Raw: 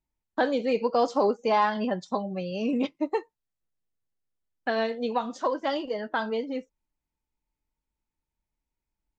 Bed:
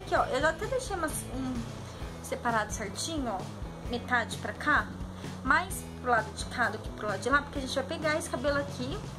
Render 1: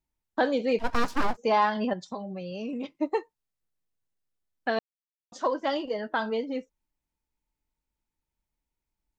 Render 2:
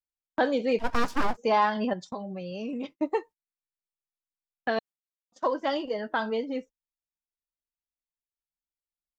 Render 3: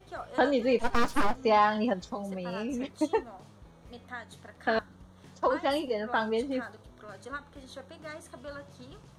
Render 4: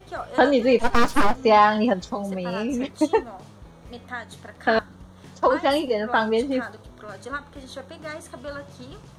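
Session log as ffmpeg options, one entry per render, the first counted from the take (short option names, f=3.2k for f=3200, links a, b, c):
-filter_complex "[0:a]asplit=3[a][b][c];[a]afade=t=out:st=0.78:d=0.02[d];[b]aeval=exprs='abs(val(0))':c=same,afade=t=in:st=0.78:d=0.02,afade=t=out:st=1.36:d=0.02[e];[c]afade=t=in:st=1.36:d=0.02[f];[d][e][f]amix=inputs=3:normalize=0,asettb=1/sr,asplit=3[g][h][i];[g]atrim=end=1.934[j];[h]atrim=start=1.93:end=2.95,asetpts=PTS-STARTPTS,afade=t=in:d=0.004:c=qsin,afade=t=out:st=1.016:d=0.004:c=qsin,acompressor=threshold=-34dB:ratio=2.5:attack=3.2:release=140:knee=1:detection=peak[k];[i]atrim=start=2.946[l];[j][k]acrossfade=d=0.004:c1=hsin:c2=qsin[m];[m][l]acrossfade=d=0.004:c1=qsin:c2=hsin,asplit=3[n][o][p];[n]atrim=end=4.79,asetpts=PTS-STARTPTS,afade=t=out:st=4.786:d=0.004:c=hsin[q];[o]atrim=start=4.79:end=5.32,asetpts=PTS-STARTPTS,volume=0[r];[p]atrim=start=5.32,asetpts=PTS-STARTPTS,afade=t=in:d=0.004:c=hsin[s];[q][r][s]concat=n=3:v=0:a=1"
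-af "agate=range=-22dB:threshold=-43dB:ratio=16:detection=peak,bandreject=f=4.1k:w=28"
-filter_complex "[1:a]volume=-13.5dB[a];[0:a][a]amix=inputs=2:normalize=0"
-af "volume=7.5dB"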